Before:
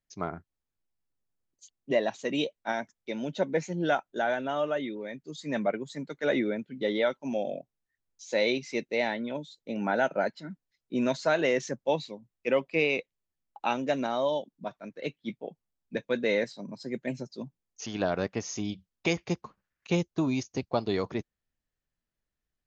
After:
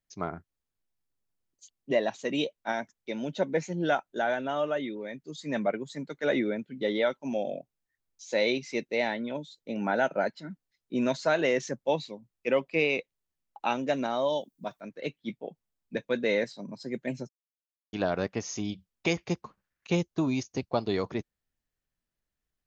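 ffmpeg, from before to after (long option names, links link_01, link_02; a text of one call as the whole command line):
ffmpeg -i in.wav -filter_complex "[0:a]asettb=1/sr,asplit=3[link_01][link_02][link_03];[link_01]atrim=end=14.304[link_04];[link_02]atrim=start=14.3:end=14.81,asetpts=PTS-STARTPTS,afade=type=in:duration=0.004:curve=qsin,afade=type=out:start_time=0.506:duration=0.004:curve=qsin,aemphasis=mode=production:type=50kf[link_05];[link_03]atrim=start=14.806[link_06];[link_04][link_05]acrossfade=duration=0.004:curve1=hsin:curve2=qsin[link_07];[link_07][link_06]acrossfade=duration=0.004:curve1=qsin:curve2=hsin,asplit=3[link_08][link_09][link_10];[link_08]atrim=end=17.29,asetpts=PTS-STARTPTS,afade=type=out:start_time=17.286:duration=0.004:curve=hsin[link_11];[link_09]atrim=start=17.29:end=17.93,asetpts=PTS-STARTPTS,volume=0[link_12];[link_10]atrim=start=17.93,asetpts=PTS-STARTPTS,afade=type=in:duration=0.004:curve=hsin[link_13];[link_11][link_12][link_13]concat=n=3:v=0:a=1" out.wav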